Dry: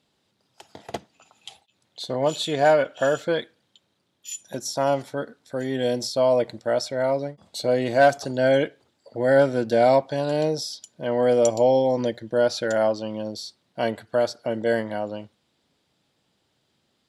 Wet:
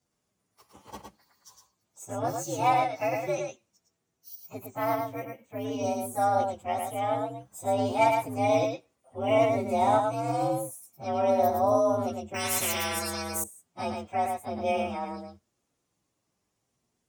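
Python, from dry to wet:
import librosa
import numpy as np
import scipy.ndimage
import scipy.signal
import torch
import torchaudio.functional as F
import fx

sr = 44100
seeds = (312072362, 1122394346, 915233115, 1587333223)

y = fx.partial_stretch(x, sr, pct=123)
y = y + 10.0 ** (-4.5 / 20.0) * np.pad(y, (int(110 * sr / 1000.0), 0))[:len(y)]
y = fx.resample_bad(y, sr, factor=3, down='filtered', up='hold', at=(4.66, 5.65))
y = fx.spectral_comp(y, sr, ratio=4.0, at=(12.34, 13.44))
y = y * librosa.db_to_amplitude(-5.0)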